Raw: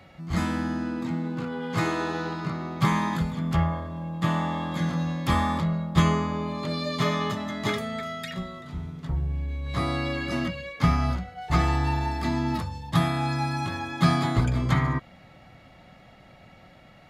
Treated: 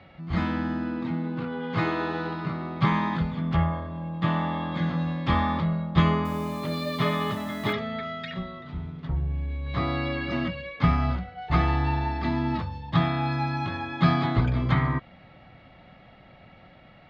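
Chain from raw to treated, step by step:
low-pass filter 4,000 Hz 24 dB per octave
0:06.25–0:07.73: bit-depth reduction 8 bits, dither none

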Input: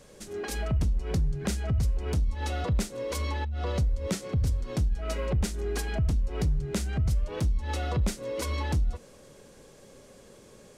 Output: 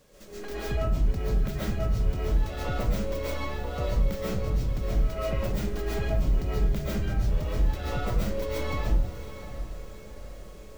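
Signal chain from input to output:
stylus tracing distortion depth 0.21 ms
parametric band 10,000 Hz −6 dB 0.59 octaves
bit-depth reduction 10 bits, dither none
on a send: feedback delay with all-pass diffusion 689 ms, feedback 50%, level −12 dB
on the sum: comb and all-pass reverb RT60 0.61 s, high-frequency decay 0.5×, pre-delay 95 ms, DRR −7.5 dB
level −7 dB

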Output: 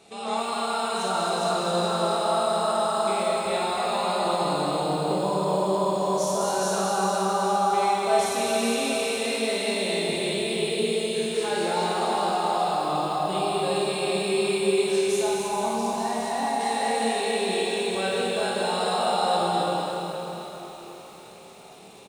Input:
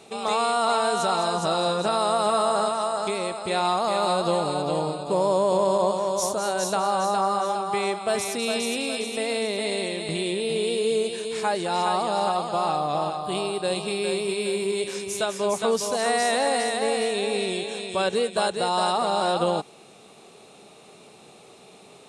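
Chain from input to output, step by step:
0:15.21–0:16.61: drawn EQ curve 250 Hz 0 dB, 540 Hz −15 dB, 840 Hz +5 dB, 1,300 Hz −10 dB
brickwall limiter −17.5 dBFS, peak gain reduction 6 dB
ambience of single reflections 26 ms −7.5 dB, 52 ms −4 dB
dense smooth reverb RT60 4.3 s, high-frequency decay 0.9×, DRR −4 dB
feedback echo at a low word length 262 ms, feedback 35%, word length 7 bits, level −7 dB
level −6 dB

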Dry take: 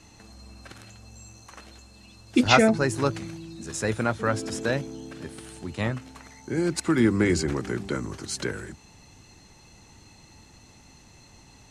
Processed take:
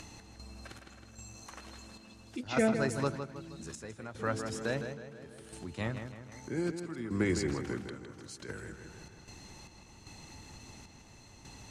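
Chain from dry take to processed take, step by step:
gate pattern "x.xx..xxxx...xx" 76 BPM −12 dB
feedback echo with a low-pass in the loop 159 ms, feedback 43%, low-pass 4,600 Hz, level −8 dB
upward compression, threshold −32 dBFS
level −8 dB

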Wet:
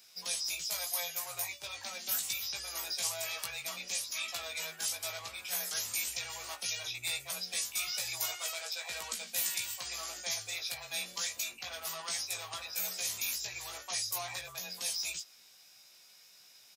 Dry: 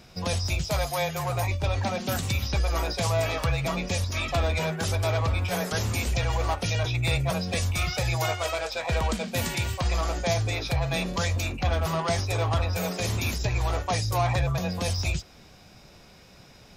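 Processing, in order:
first difference
double-tracking delay 17 ms −3.5 dB

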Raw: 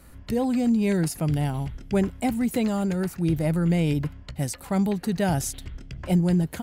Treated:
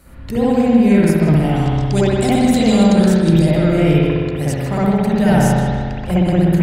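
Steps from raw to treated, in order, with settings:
0:01.56–0:03.51: flat-topped bell 5,500 Hz +12.5 dB
on a send: feedback echo with a low-pass in the loop 157 ms, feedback 52%, low-pass 3,000 Hz, level −6 dB
on the sum: spring reverb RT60 1.5 s, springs 60 ms, chirp 75 ms, DRR −8 dB
every ending faded ahead of time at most 140 dB per second
level +2 dB

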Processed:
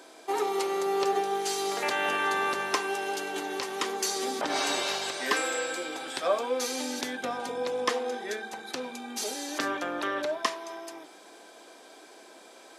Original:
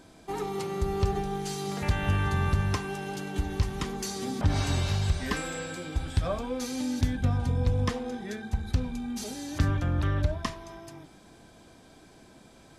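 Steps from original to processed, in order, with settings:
high-pass filter 360 Hz 24 dB per octave
level +6 dB

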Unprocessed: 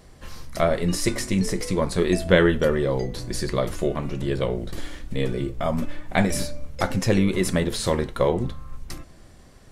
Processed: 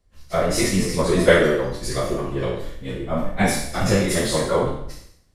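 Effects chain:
peak hold with a decay on every bin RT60 1.79 s
time stretch by phase vocoder 0.55×
multiband upward and downward expander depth 70%
level +1.5 dB

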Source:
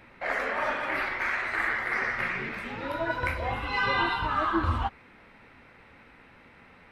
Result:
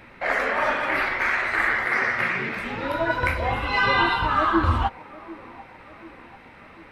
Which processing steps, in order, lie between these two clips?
0:01.85–0:02.59: high-pass filter 84 Hz
on a send: delay with a band-pass on its return 743 ms, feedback 54%, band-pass 450 Hz, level −17 dB
on the sum: level +6 dB

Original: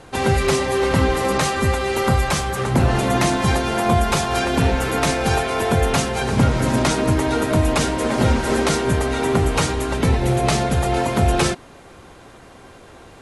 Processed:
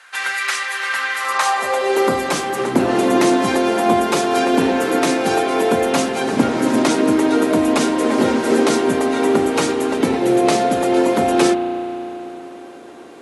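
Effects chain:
high-pass filter sweep 1,600 Hz → 290 Hz, 0:01.15–0:02.15
spring reverb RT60 3.6 s, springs 34 ms, chirp 60 ms, DRR 9.5 dB

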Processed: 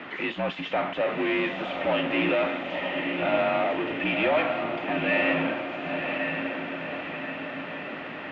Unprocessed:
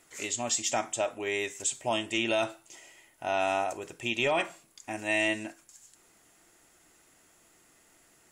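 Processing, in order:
power curve on the samples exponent 0.35
single-sideband voice off tune −52 Hz 200–3,100 Hz
feedback delay with all-pass diffusion 1,017 ms, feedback 54%, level −4 dB
level −4 dB

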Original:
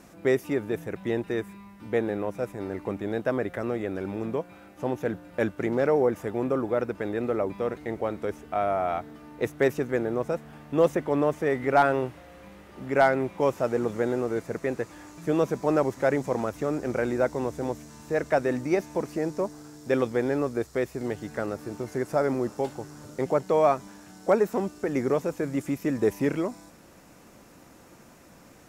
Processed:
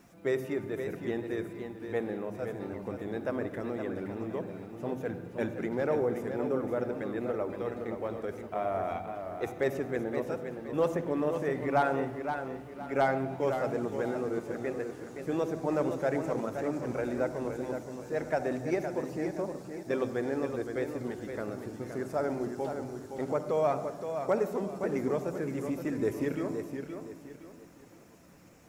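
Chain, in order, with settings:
spectral magnitudes quantised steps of 15 dB
on a send at −11 dB: convolution reverb RT60 1.1 s, pre-delay 47 ms
on the sum: bit-depth reduction 12 bits, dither triangular
feedback echo with a swinging delay time 519 ms, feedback 34%, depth 73 cents, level −7.5 dB
level −6.5 dB

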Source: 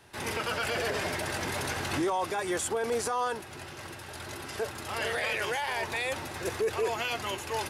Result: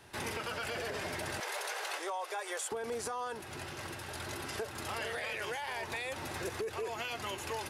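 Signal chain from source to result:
0:01.40–0:02.72: Butterworth high-pass 430 Hz 48 dB per octave
downward compressor, threshold −35 dBFS, peak gain reduction 10 dB

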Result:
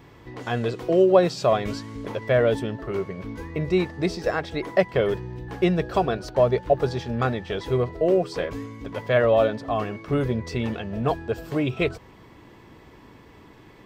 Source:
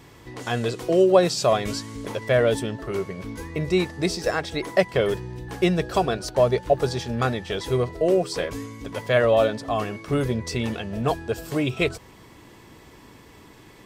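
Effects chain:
parametric band 9,800 Hz −13.5 dB 1.8 octaves

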